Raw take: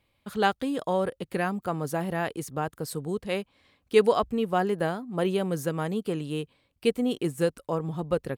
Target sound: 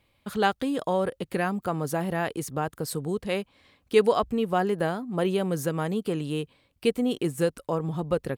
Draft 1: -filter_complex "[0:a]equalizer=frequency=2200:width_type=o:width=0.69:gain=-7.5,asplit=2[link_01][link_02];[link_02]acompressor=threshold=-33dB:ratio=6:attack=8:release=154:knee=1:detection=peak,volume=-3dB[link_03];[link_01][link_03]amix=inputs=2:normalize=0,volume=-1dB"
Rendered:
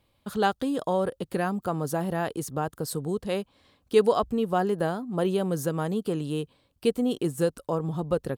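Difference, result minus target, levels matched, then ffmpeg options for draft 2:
2,000 Hz band −3.0 dB
-filter_complex "[0:a]asplit=2[link_01][link_02];[link_02]acompressor=threshold=-33dB:ratio=6:attack=8:release=154:knee=1:detection=peak,volume=-3dB[link_03];[link_01][link_03]amix=inputs=2:normalize=0,volume=-1dB"

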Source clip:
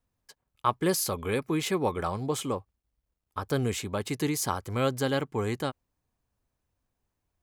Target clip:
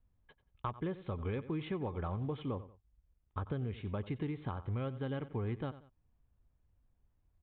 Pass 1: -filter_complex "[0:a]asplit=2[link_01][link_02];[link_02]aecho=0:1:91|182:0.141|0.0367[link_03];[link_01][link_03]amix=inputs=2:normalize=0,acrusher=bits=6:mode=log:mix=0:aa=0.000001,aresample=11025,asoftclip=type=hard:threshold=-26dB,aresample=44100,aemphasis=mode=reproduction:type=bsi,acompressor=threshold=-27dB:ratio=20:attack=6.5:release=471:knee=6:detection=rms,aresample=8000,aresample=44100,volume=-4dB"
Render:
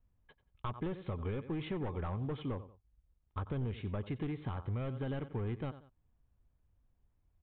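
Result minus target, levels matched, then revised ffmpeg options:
hard clipping: distortion +17 dB
-filter_complex "[0:a]asplit=2[link_01][link_02];[link_02]aecho=0:1:91|182:0.141|0.0367[link_03];[link_01][link_03]amix=inputs=2:normalize=0,acrusher=bits=6:mode=log:mix=0:aa=0.000001,aresample=11025,asoftclip=type=hard:threshold=-15.5dB,aresample=44100,aemphasis=mode=reproduction:type=bsi,acompressor=threshold=-27dB:ratio=20:attack=6.5:release=471:knee=6:detection=rms,aresample=8000,aresample=44100,volume=-4dB"

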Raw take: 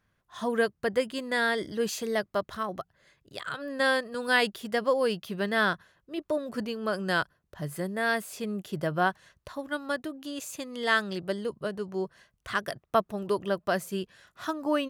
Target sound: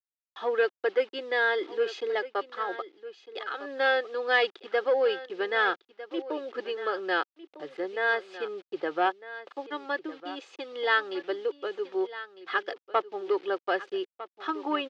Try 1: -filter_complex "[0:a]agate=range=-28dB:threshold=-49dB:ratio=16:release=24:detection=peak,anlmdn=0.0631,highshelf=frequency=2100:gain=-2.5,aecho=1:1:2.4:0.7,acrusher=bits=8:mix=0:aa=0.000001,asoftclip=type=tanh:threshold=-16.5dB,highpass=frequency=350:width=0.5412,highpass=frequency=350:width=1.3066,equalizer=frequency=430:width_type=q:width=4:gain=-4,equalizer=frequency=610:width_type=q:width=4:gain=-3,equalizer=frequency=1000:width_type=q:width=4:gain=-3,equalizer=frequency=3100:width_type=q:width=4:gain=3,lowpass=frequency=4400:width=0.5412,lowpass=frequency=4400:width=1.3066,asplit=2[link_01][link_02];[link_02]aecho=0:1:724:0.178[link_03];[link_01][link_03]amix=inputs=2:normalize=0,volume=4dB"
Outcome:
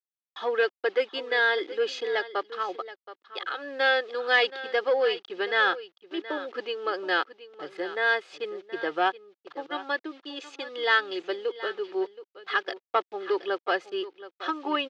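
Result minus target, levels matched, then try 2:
echo 529 ms early; 4,000 Hz band +3.0 dB
-filter_complex "[0:a]agate=range=-28dB:threshold=-49dB:ratio=16:release=24:detection=peak,anlmdn=0.0631,highshelf=frequency=2100:gain=-10,aecho=1:1:2.4:0.7,acrusher=bits=8:mix=0:aa=0.000001,asoftclip=type=tanh:threshold=-16.5dB,highpass=frequency=350:width=0.5412,highpass=frequency=350:width=1.3066,equalizer=frequency=430:width_type=q:width=4:gain=-4,equalizer=frequency=610:width_type=q:width=4:gain=-3,equalizer=frequency=1000:width_type=q:width=4:gain=-3,equalizer=frequency=3100:width_type=q:width=4:gain=3,lowpass=frequency=4400:width=0.5412,lowpass=frequency=4400:width=1.3066,asplit=2[link_01][link_02];[link_02]aecho=0:1:1253:0.178[link_03];[link_01][link_03]amix=inputs=2:normalize=0,volume=4dB"

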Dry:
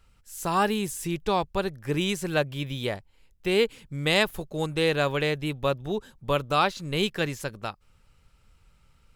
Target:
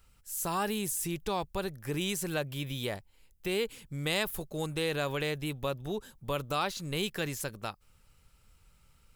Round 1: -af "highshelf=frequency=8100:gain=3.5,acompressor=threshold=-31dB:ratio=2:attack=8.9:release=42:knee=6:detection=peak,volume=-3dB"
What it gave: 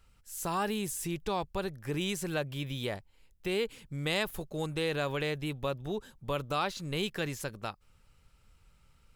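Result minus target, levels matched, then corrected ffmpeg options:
8,000 Hz band −3.5 dB
-af "highshelf=frequency=8100:gain=13,acompressor=threshold=-31dB:ratio=2:attack=8.9:release=42:knee=6:detection=peak,volume=-3dB"

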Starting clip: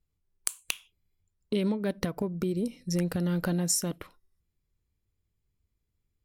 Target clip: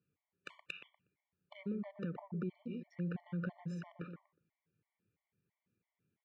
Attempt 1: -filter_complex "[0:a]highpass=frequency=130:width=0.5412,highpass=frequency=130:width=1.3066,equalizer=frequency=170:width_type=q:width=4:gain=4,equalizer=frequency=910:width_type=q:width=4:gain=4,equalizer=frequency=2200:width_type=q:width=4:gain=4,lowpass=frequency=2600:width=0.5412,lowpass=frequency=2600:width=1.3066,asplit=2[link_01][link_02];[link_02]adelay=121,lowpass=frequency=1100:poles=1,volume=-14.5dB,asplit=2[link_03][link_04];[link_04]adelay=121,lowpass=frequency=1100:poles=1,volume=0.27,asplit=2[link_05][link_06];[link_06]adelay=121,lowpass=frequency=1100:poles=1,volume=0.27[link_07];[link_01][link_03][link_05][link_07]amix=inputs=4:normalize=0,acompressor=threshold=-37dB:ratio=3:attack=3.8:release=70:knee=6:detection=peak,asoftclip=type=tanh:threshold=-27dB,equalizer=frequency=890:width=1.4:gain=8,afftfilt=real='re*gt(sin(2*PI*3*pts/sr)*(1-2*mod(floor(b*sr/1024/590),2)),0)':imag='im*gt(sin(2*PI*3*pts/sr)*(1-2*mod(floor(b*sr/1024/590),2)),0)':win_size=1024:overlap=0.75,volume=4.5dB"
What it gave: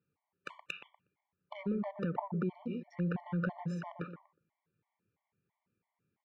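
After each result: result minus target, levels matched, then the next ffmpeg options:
1,000 Hz band +7.0 dB; downward compressor: peak gain reduction −5 dB
-filter_complex "[0:a]highpass=frequency=130:width=0.5412,highpass=frequency=130:width=1.3066,equalizer=frequency=170:width_type=q:width=4:gain=4,equalizer=frequency=910:width_type=q:width=4:gain=4,equalizer=frequency=2200:width_type=q:width=4:gain=4,lowpass=frequency=2600:width=0.5412,lowpass=frequency=2600:width=1.3066,asplit=2[link_01][link_02];[link_02]adelay=121,lowpass=frequency=1100:poles=1,volume=-14.5dB,asplit=2[link_03][link_04];[link_04]adelay=121,lowpass=frequency=1100:poles=1,volume=0.27,asplit=2[link_05][link_06];[link_06]adelay=121,lowpass=frequency=1100:poles=1,volume=0.27[link_07];[link_01][link_03][link_05][link_07]amix=inputs=4:normalize=0,acompressor=threshold=-37dB:ratio=3:attack=3.8:release=70:knee=6:detection=peak,asoftclip=type=tanh:threshold=-27dB,equalizer=frequency=890:width=1.4:gain=-3,afftfilt=real='re*gt(sin(2*PI*3*pts/sr)*(1-2*mod(floor(b*sr/1024/590),2)),0)':imag='im*gt(sin(2*PI*3*pts/sr)*(1-2*mod(floor(b*sr/1024/590),2)),0)':win_size=1024:overlap=0.75,volume=4.5dB"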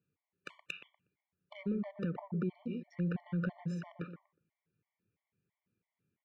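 downward compressor: peak gain reduction −5 dB
-filter_complex "[0:a]highpass=frequency=130:width=0.5412,highpass=frequency=130:width=1.3066,equalizer=frequency=170:width_type=q:width=4:gain=4,equalizer=frequency=910:width_type=q:width=4:gain=4,equalizer=frequency=2200:width_type=q:width=4:gain=4,lowpass=frequency=2600:width=0.5412,lowpass=frequency=2600:width=1.3066,asplit=2[link_01][link_02];[link_02]adelay=121,lowpass=frequency=1100:poles=1,volume=-14.5dB,asplit=2[link_03][link_04];[link_04]adelay=121,lowpass=frequency=1100:poles=1,volume=0.27,asplit=2[link_05][link_06];[link_06]adelay=121,lowpass=frequency=1100:poles=1,volume=0.27[link_07];[link_01][link_03][link_05][link_07]amix=inputs=4:normalize=0,acompressor=threshold=-44.5dB:ratio=3:attack=3.8:release=70:knee=6:detection=peak,asoftclip=type=tanh:threshold=-27dB,equalizer=frequency=890:width=1.4:gain=-3,afftfilt=real='re*gt(sin(2*PI*3*pts/sr)*(1-2*mod(floor(b*sr/1024/590),2)),0)':imag='im*gt(sin(2*PI*3*pts/sr)*(1-2*mod(floor(b*sr/1024/590),2)),0)':win_size=1024:overlap=0.75,volume=4.5dB"

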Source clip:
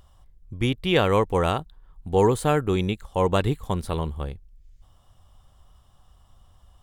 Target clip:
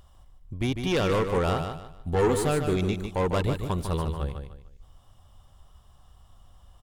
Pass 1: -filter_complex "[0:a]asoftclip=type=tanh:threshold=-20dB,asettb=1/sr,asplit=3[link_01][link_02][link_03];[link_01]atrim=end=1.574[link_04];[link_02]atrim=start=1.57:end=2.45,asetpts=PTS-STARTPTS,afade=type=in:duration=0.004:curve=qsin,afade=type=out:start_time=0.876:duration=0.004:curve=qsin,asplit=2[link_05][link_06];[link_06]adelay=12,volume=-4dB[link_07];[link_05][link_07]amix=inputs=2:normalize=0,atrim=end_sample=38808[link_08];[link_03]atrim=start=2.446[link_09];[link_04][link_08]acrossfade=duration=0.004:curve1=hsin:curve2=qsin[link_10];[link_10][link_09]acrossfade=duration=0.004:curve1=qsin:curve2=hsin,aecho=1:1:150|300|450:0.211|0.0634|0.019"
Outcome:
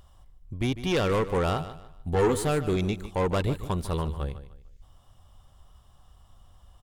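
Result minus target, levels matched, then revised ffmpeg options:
echo-to-direct −6.5 dB
-filter_complex "[0:a]asoftclip=type=tanh:threshold=-20dB,asettb=1/sr,asplit=3[link_01][link_02][link_03];[link_01]atrim=end=1.574[link_04];[link_02]atrim=start=1.57:end=2.45,asetpts=PTS-STARTPTS,afade=type=in:duration=0.004:curve=qsin,afade=type=out:start_time=0.876:duration=0.004:curve=qsin,asplit=2[link_05][link_06];[link_06]adelay=12,volume=-4dB[link_07];[link_05][link_07]amix=inputs=2:normalize=0,atrim=end_sample=38808[link_08];[link_03]atrim=start=2.446[link_09];[link_04][link_08]acrossfade=duration=0.004:curve1=hsin:curve2=qsin[link_10];[link_10][link_09]acrossfade=duration=0.004:curve1=qsin:curve2=hsin,aecho=1:1:150|300|450|600:0.447|0.134|0.0402|0.0121"

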